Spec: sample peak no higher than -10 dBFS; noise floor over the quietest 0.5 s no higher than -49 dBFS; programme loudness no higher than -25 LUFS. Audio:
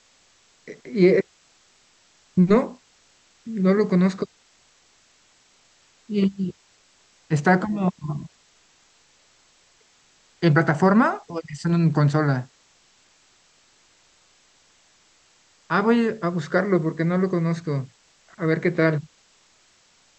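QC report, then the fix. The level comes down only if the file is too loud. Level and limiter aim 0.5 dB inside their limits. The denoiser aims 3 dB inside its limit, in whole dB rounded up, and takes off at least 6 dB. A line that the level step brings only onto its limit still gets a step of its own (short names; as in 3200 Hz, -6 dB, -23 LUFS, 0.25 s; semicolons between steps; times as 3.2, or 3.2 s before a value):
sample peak -4.5 dBFS: fail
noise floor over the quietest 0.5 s -59 dBFS: OK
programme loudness -22.0 LUFS: fail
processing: gain -3.5 dB; limiter -10.5 dBFS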